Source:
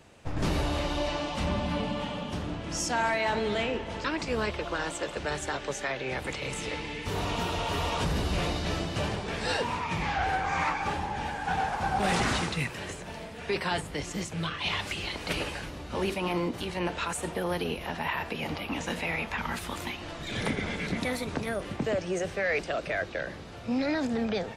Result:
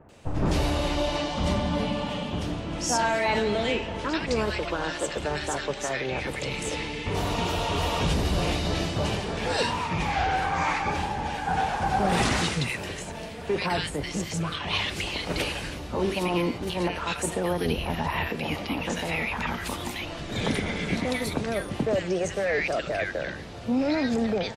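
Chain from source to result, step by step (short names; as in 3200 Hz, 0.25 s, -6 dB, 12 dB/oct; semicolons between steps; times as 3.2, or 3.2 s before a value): 1.12–1.73 notch 2600 Hz, Q 12; 17.66–18.27 low shelf 160 Hz +9.5 dB; bands offset in time lows, highs 90 ms, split 1500 Hz; gain +4 dB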